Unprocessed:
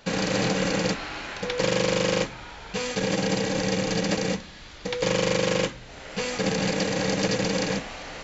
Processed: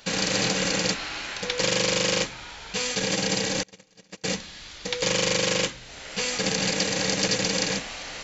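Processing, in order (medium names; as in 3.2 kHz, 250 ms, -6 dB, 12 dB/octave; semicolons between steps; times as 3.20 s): 3.63–4.24 s: gate -20 dBFS, range -36 dB; treble shelf 2.2 kHz +11.5 dB; trim -3.5 dB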